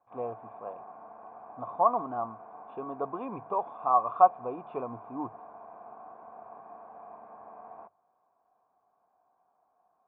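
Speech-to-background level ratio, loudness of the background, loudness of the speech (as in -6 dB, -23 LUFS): 19.0 dB, -48.5 LUFS, -29.5 LUFS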